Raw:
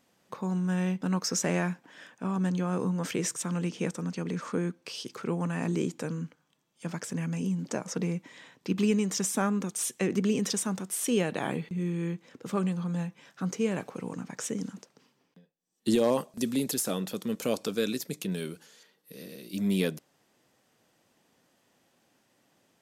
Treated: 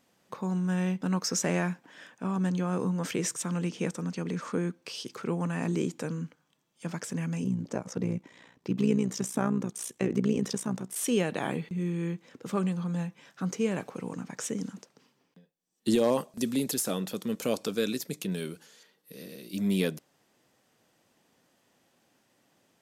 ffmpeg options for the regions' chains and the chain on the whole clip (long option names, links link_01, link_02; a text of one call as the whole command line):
ffmpeg -i in.wav -filter_complex "[0:a]asettb=1/sr,asplit=3[link_01][link_02][link_03];[link_01]atrim=end=7.444[link_04];[link_02]atrim=start=7.44:end=10.96,asetpts=PTS-STARTPTS,afade=type=in:duration=0.004:curve=qsin,afade=type=out:start_time=3.516:duration=0.004:curve=qsin,tiltshelf=frequency=1200:gain=3.5,tremolo=f=60:d=0.75[link_05];[link_03]atrim=start=10.956[link_06];[link_04][link_05]acrossfade=duration=0.004:curve1=hsin:curve2=qsin[link_07];[link_07][link_06]acrossfade=duration=0.004:curve1=qsin:curve2=hsin" out.wav